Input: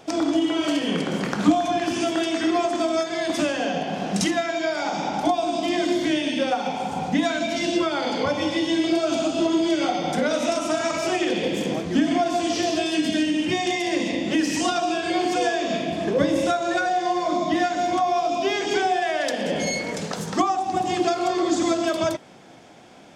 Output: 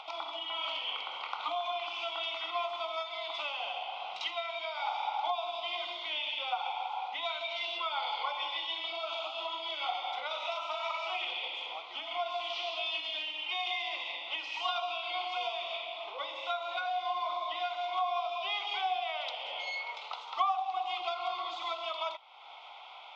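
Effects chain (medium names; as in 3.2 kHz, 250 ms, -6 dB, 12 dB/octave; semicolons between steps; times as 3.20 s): elliptic band-pass 850–3600 Hz, stop band 80 dB; upward compressor, threshold -35 dBFS; Butterworth band-stop 1.7 kHz, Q 2; trim -3 dB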